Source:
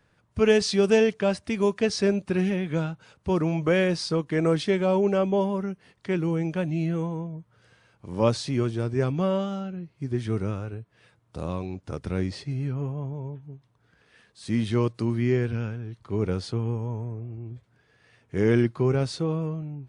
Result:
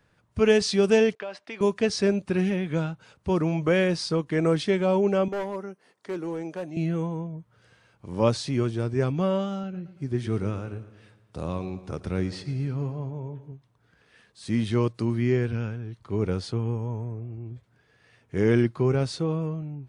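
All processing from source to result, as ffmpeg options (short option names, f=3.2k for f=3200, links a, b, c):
-filter_complex "[0:a]asettb=1/sr,asplit=3[a][b][c];[a]atrim=end=1.154[d];[b]atrim=start=1.15:end=1.61,asetpts=PTS-STARTPTS,afade=t=in:d=0.004:c=qsin,afade=t=out:st=0.456:d=0.004:c=qsin,agate=range=-33dB:threshold=-52dB:ratio=3:release=100:detection=peak,highpass=500,lowpass=3.8k,acompressor=threshold=-31dB:ratio=5:attack=3.2:release=140:knee=1:detection=peak[e];[c]atrim=start=1.606[f];[d][e]acrossfade=d=0.004:c1=hsin:c2=qsin[g];[g][f]acrossfade=d=0.004:c1=qsin:c2=hsin,asettb=1/sr,asplit=3[h][i][j];[h]atrim=end=5.284[k];[i]atrim=start=5.28:end=6.77,asetpts=PTS-STARTPTS,afade=t=in:d=0.004:c=qsin,afade=t=out:st=1.486:d=0.004:c=qsin,highpass=350,equalizer=f=2.8k:w=0.9:g=-7.5,asoftclip=type=hard:threshold=-26.5dB[l];[j]atrim=start=6.766[m];[k][l]acrossfade=d=0.004:c1=hsin:c2=qsin[n];[n][m]acrossfade=d=0.004:c1=qsin:c2=hsin,asettb=1/sr,asplit=3[o][p][q];[o]atrim=end=9.634[r];[p]atrim=start=9.63:end=13.52,asetpts=PTS-STARTPTS,afade=t=in:d=0.004:c=qsin,afade=t=out:st=3.886:d=0.004:c=qsin,highpass=50,aecho=1:1:113|226|339|452|565|678:0.168|0.0957|0.0545|0.0311|0.0177|0.0101,atrim=end_sample=171549[s];[q]atrim=start=13.516[t];[r][s]acrossfade=d=0.004:c1=hsin:c2=qsin[u];[u][t]acrossfade=d=0.004:c1=qsin:c2=hsin"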